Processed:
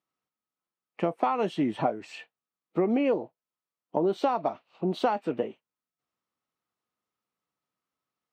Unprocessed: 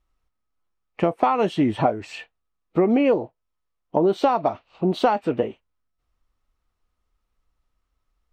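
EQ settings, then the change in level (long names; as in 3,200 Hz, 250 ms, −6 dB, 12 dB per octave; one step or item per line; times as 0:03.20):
high-pass filter 140 Hz 24 dB per octave
−6.5 dB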